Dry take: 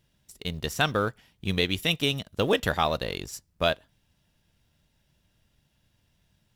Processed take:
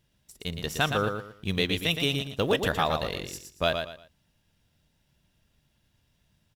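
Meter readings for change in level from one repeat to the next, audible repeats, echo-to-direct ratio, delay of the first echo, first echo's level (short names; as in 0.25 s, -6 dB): -11.5 dB, 3, -6.0 dB, 0.116 s, -6.5 dB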